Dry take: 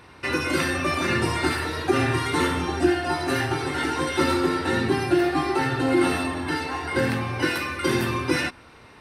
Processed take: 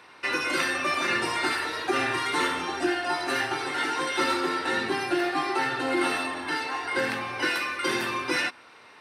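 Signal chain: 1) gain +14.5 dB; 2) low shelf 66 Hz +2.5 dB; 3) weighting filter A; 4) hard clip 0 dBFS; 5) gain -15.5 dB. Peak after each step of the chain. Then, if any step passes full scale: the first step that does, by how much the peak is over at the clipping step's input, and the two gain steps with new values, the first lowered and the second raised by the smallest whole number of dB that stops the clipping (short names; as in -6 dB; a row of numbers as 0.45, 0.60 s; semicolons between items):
+6.0, +6.5, +4.0, 0.0, -15.5 dBFS; step 1, 4.0 dB; step 1 +10.5 dB, step 5 -11.5 dB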